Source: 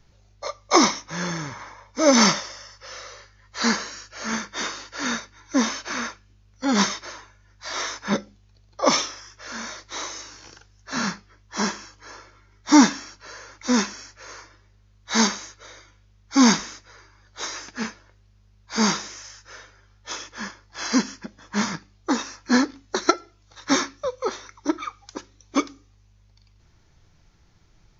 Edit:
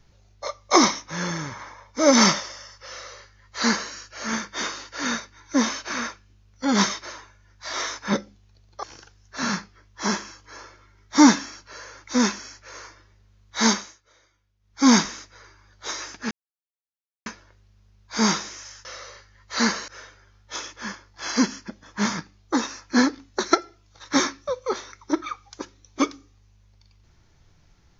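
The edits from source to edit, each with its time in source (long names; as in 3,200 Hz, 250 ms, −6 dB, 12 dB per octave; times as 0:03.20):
0:02.89–0:03.92: duplicate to 0:19.44
0:08.83–0:10.37: remove
0:15.23–0:16.41: duck −15 dB, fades 0.28 s
0:17.85: splice in silence 0.95 s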